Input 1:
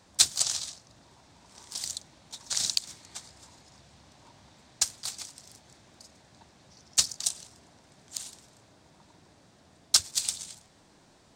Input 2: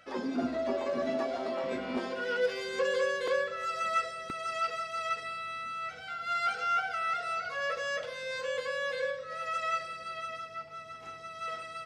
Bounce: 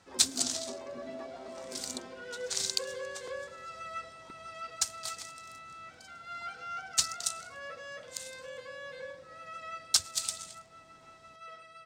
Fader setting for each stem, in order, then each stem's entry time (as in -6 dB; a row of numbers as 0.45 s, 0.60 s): -4.0 dB, -10.5 dB; 0.00 s, 0.00 s